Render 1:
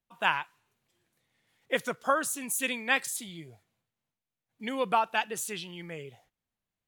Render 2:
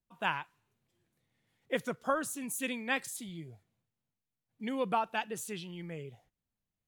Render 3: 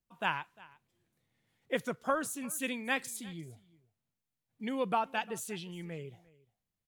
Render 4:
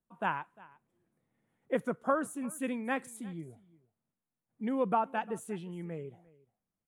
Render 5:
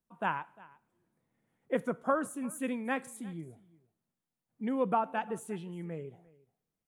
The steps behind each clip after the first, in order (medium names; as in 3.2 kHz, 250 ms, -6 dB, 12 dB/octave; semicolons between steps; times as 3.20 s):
bass shelf 410 Hz +10 dB; trim -7 dB
delay 351 ms -22.5 dB
FFT filter 110 Hz 0 dB, 200 Hz +8 dB, 1.3 kHz +5 dB, 4.9 kHz -13 dB, 9.9 kHz 0 dB, 15 kHz -13 dB; trim -4 dB
reverberation, pre-delay 3 ms, DRR 19 dB